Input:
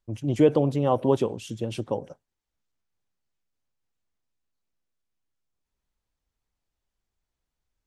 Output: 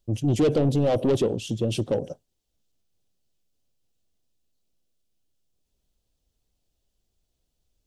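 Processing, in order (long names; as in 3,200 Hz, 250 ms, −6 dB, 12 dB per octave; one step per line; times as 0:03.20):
0:01.20–0:01.68: high-shelf EQ 8,600 Hz → 4,800 Hz −8 dB
soft clipping −24.5 dBFS, distortion −5 dB
flat-topped bell 1,400 Hz −10.5 dB
level +8 dB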